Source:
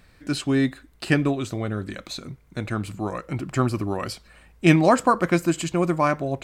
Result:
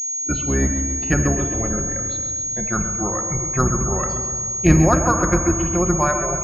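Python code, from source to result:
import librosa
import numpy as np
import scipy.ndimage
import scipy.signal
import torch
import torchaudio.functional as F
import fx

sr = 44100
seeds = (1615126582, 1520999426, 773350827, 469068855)

p1 = fx.octave_divider(x, sr, octaves=2, level_db=3.0)
p2 = fx.noise_reduce_blind(p1, sr, reduce_db=17)
p3 = p2 + fx.echo_feedback(p2, sr, ms=133, feedback_pct=56, wet_db=-9.5, dry=0)
p4 = fx.dynamic_eq(p3, sr, hz=1400.0, q=2.5, threshold_db=-39.0, ratio=4.0, max_db=6)
p5 = fx.rider(p4, sr, range_db=5, speed_s=0.5)
p6 = p4 + (p5 * 10.0 ** (-1.5 / 20.0))
p7 = fx.room_shoebox(p6, sr, seeds[0], volume_m3=2600.0, walls='mixed', distance_m=0.92)
p8 = fx.env_lowpass_down(p7, sr, base_hz=2000.0, full_db=-6.5)
p9 = scipy.signal.sosfilt(scipy.signal.butter(2, 53.0, 'highpass', fs=sr, output='sos'), p8)
p10 = fx.pwm(p9, sr, carrier_hz=6600.0)
y = p10 * 10.0 ** (-6.5 / 20.0)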